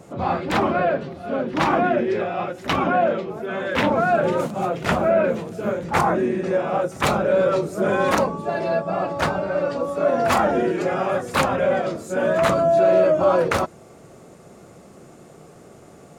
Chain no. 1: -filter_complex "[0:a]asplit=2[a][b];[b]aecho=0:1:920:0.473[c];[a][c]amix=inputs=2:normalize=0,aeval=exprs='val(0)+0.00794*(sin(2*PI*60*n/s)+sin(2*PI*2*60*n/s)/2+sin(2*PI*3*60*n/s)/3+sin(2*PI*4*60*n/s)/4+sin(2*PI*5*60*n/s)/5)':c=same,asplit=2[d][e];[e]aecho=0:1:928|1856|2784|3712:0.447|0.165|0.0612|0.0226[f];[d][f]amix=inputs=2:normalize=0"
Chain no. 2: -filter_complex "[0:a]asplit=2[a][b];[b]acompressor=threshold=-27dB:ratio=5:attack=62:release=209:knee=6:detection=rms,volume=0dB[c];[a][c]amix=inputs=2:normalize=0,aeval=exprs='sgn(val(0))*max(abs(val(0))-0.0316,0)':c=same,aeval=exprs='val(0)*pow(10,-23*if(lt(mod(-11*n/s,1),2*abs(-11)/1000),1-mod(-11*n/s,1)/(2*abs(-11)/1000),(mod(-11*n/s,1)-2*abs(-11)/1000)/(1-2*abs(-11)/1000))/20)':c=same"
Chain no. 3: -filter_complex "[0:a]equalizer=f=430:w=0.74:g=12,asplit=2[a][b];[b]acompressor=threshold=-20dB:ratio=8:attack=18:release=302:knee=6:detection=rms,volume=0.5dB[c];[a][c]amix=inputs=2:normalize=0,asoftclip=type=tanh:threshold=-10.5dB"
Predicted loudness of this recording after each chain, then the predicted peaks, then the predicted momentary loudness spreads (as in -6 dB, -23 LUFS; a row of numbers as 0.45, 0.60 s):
-20.0, -27.0, -15.5 LUFS; -4.5, -6.0, -10.5 dBFS; 8, 8, 18 LU